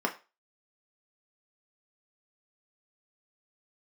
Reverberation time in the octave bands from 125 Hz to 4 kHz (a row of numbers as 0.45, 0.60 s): 0.25, 0.25, 0.30, 0.30, 0.30, 0.30 s